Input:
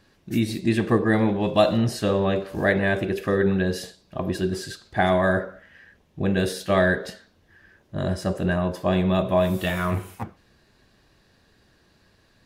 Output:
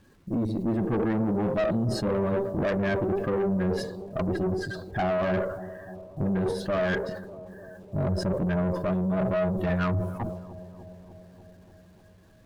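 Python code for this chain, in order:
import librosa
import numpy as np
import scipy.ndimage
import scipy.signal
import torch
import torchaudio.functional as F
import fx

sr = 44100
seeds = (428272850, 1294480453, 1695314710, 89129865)

p1 = fx.spec_expand(x, sr, power=1.7)
p2 = fx.high_shelf_res(p1, sr, hz=1800.0, db=-8.0, q=1.5)
p3 = fx.over_compress(p2, sr, threshold_db=-24.0, ratio=-0.5)
p4 = p2 + F.gain(torch.from_numpy(p3), -1.0).numpy()
p5 = fx.quant_dither(p4, sr, seeds[0], bits=10, dither='none')
p6 = fx.tube_stage(p5, sr, drive_db=19.0, bias=0.55)
p7 = p6 + fx.echo_bbd(p6, sr, ms=296, stages=2048, feedback_pct=71, wet_db=-15.5, dry=0)
p8 = fx.sustainer(p7, sr, db_per_s=62.0)
y = F.gain(torch.from_numpy(p8), -3.0).numpy()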